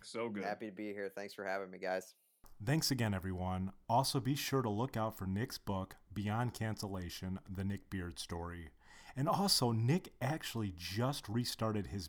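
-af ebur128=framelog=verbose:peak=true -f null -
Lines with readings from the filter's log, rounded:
Integrated loudness:
  I:         -38.1 LUFS
  Threshold: -48.3 LUFS
Loudness range:
  LRA:         5.2 LU
  Threshold: -58.2 LUFS
  LRA low:   -41.7 LUFS
  LRA high:  -36.5 LUFS
True peak:
  Peak:      -16.8 dBFS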